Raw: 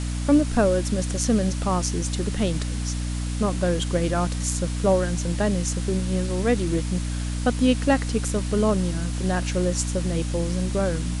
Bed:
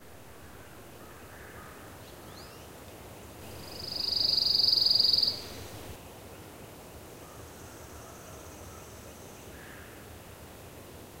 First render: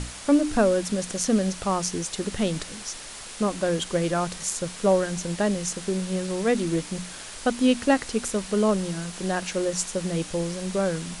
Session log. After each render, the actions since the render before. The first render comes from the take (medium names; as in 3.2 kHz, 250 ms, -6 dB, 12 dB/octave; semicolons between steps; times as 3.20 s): hum notches 60/120/180/240/300 Hz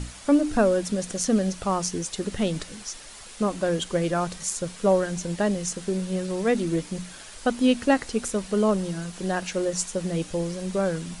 noise reduction 6 dB, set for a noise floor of -40 dBFS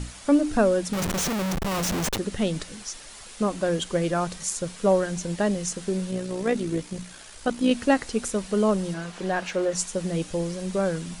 0.93–2.18 s: Schmitt trigger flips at -34.5 dBFS; 6.11–7.71 s: AM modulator 60 Hz, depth 30%; 8.94–9.75 s: overdrive pedal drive 12 dB, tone 1.7 kHz, clips at -14 dBFS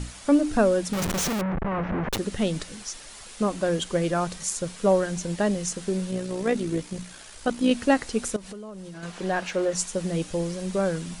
1.41–2.10 s: low-pass 2 kHz 24 dB/octave; 8.36–9.03 s: compression 10:1, threshold -36 dBFS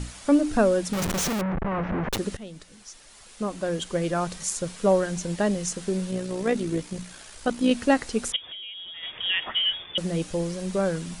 2.37–4.42 s: fade in, from -17 dB; 8.32–9.98 s: frequency inversion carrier 3.5 kHz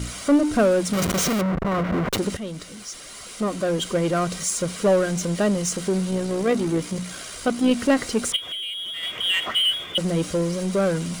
comb of notches 870 Hz; power-law waveshaper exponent 0.7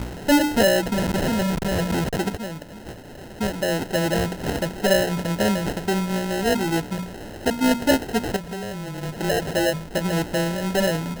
sample-and-hold 38×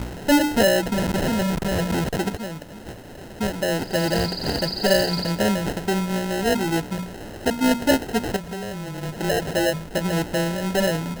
add bed -6 dB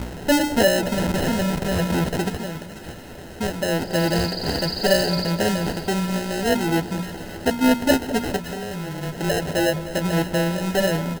doubling 12 ms -11 dB; two-band feedback delay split 1.2 kHz, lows 209 ms, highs 568 ms, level -14 dB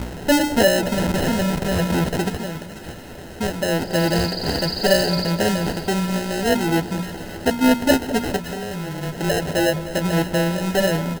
trim +1.5 dB